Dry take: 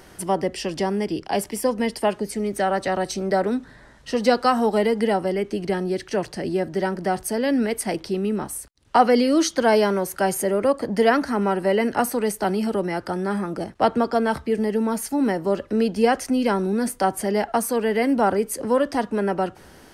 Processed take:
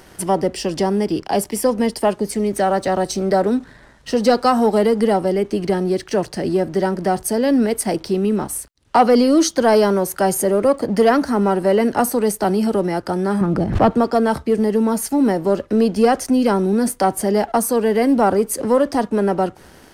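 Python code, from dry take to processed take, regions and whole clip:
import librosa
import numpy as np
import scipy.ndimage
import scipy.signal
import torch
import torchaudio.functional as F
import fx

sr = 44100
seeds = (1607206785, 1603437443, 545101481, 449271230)

y = fx.chain(x, sr, fx.bass_treble(bass_db=10, treble_db=-11),
    fx.pre_swell(db_per_s=95.0), at=(13.41, 13.91))
y = fx.dynamic_eq(y, sr, hz=2200.0, q=0.93, threshold_db=-40.0, ratio=4.0, max_db=-7)
y = fx.leveller(y, sr, passes=1)
y = y * 10.0 ** (2.0 / 20.0)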